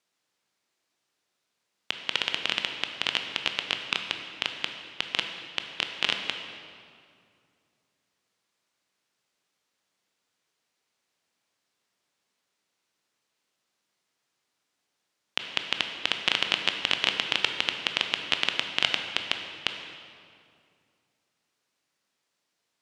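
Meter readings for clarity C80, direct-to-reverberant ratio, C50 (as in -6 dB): 7.0 dB, 4.5 dB, 6.0 dB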